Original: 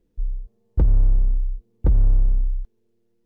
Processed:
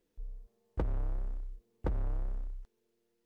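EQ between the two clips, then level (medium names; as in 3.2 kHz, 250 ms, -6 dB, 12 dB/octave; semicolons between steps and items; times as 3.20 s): bass shelf 220 Hz -11 dB; bass shelf 470 Hz -8 dB; +1.0 dB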